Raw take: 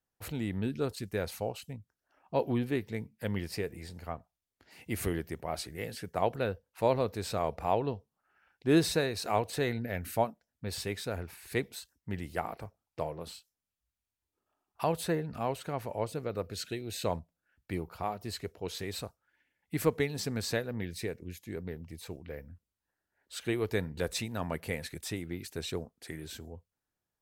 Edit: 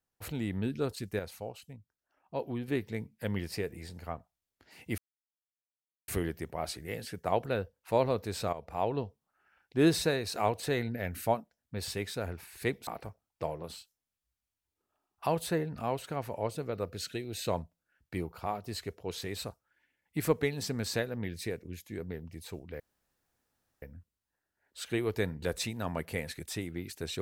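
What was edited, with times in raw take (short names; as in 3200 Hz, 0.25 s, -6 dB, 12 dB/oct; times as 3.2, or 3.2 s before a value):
1.19–2.68 gain -6 dB
4.98 insert silence 1.10 s
7.43–7.88 fade in, from -13 dB
11.77–12.44 cut
22.37 insert room tone 1.02 s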